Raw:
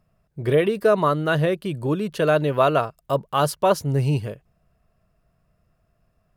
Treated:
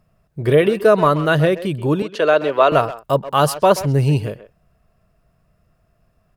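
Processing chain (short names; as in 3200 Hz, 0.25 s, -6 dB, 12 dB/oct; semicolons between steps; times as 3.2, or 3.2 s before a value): 2.02–2.72 three-band isolator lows -21 dB, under 290 Hz, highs -19 dB, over 6900 Hz; speakerphone echo 0.13 s, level -13 dB; gain +5 dB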